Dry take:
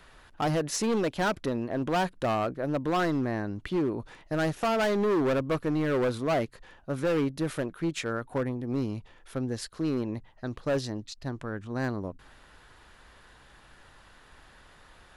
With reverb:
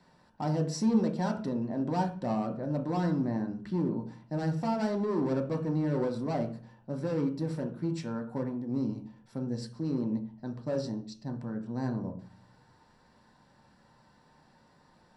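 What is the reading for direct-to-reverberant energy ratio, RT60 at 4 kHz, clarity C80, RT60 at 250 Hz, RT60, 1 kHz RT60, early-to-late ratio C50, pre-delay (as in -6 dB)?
2.0 dB, 0.40 s, 14.5 dB, 0.70 s, 0.40 s, 0.45 s, 10.5 dB, 3 ms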